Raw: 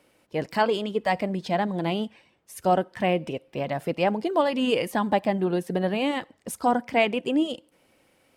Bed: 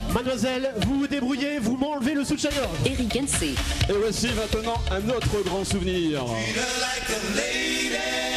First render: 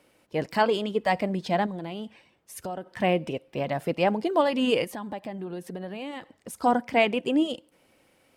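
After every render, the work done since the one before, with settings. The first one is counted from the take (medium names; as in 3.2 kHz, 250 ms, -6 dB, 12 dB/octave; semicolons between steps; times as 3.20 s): 1.66–2.87 s: compression 5:1, threshold -31 dBFS; 4.84–6.60 s: compression 2.5:1, threshold -37 dBFS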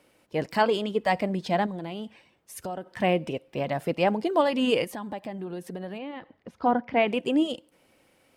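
5.98–7.08 s: distance through air 280 m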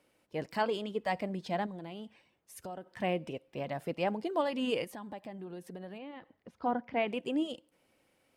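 trim -8.5 dB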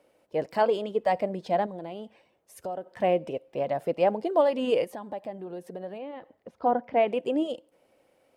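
peaking EQ 570 Hz +11 dB 1.4 oct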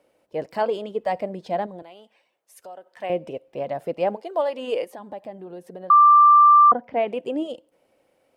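1.82–3.10 s: high-pass 1.1 kHz 6 dB/octave; 4.15–4.98 s: high-pass 630 Hz -> 250 Hz; 5.90–6.72 s: bleep 1.18 kHz -9 dBFS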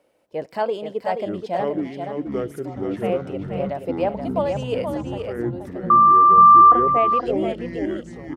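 ever faster or slower copies 748 ms, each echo -7 st, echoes 3; delay 478 ms -6.5 dB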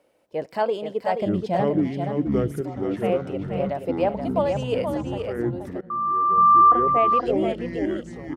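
1.22–2.61 s: tone controls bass +11 dB, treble +1 dB; 5.81–7.19 s: fade in linear, from -20 dB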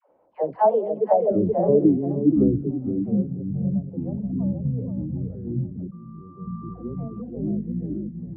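low-pass sweep 950 Hz -> 180 Hz, 0.29–3.37 s; phase dispersion lows, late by 104 ms, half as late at 530 Hz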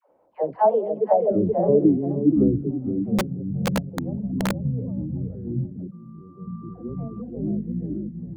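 3.18–4.58 s: integer overflow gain 17 dB; 5.65–6.89 s: comb of notches 1.1 kHz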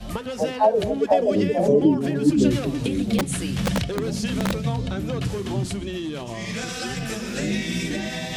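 add bed -5.5 dB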